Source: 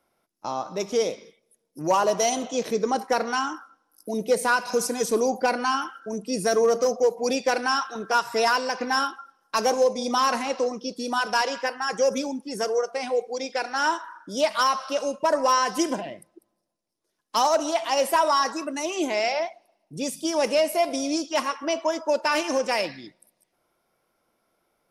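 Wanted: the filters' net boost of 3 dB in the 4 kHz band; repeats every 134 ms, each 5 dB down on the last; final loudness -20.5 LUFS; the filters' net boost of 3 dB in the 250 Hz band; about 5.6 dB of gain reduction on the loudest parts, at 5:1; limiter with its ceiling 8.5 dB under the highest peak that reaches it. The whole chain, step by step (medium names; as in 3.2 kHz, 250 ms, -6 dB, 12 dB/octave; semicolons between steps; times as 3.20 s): peaking EQ 250 Hz +3.5 dB; peaking EQ 4 kHz +4.5 dB; compression 5:1, threshold -22 dBFS; peak limiter -20.5 dBFS; feedback delay 134 ms, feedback 56%, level -5 dB; trim +8 dB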